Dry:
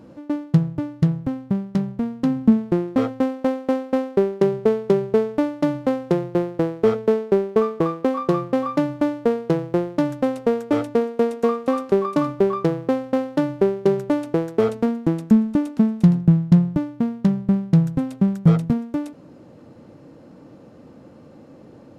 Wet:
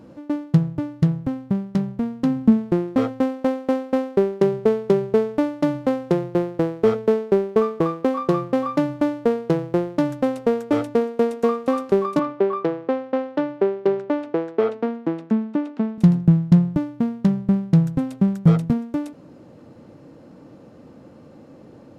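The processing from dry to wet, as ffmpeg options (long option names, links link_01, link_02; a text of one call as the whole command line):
ffmpeg -i in.wav -filter_complex "[0:a]asettb=1/sr,asplit=3[link_01][link_02][link_03];[link_01]atrim=end=12.194[link_04];[link_02]atrim=start=12.19:end=15.98,asetpts=PTS-STARTPTS,afade=type=in:duration=0.004:curve=qsin,afade=type=out:start_time=3.786:duration=0.004:curve=qsin,highpass=290,lowpass=3200[link_05];[link_03]atrim=start=15.976[link_06];[link_04][link_05]acrossfade=duration=0.004:curve1=hsin:curve2=qsin[link_07];[link_07][link_06]acrossfade=duration=0.004:curve1=qsin:curve2=hsin" out.wav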